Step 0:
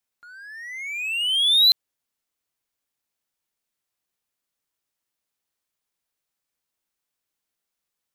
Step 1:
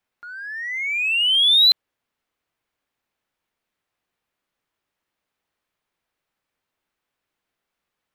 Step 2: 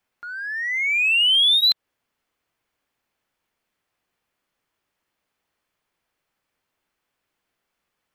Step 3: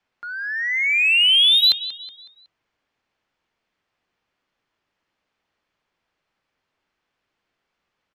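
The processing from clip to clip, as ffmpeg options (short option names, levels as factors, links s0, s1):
-af "bass=f=250:g=-1,treble=f=4000:g=-14,volume=2.66"
-af "bandreject=f=3800:w=24,acompressor=threshold=0.126:ratio=6,volume=1.41"
-filter_complex "[0:a]acrossover=split=120|6600[s0][s1][s2];[s1]aecho=1:1:185|370|555|740:0.2|0.0818|0.0335|0.0138[s3];[s2]aeval=exprs='sgn(val(0))*max(abs(val(0))-0.00158,0)':c=same[s4];[s0][s3][s4]amix=inputs=3:normalize=0,volume=1.26"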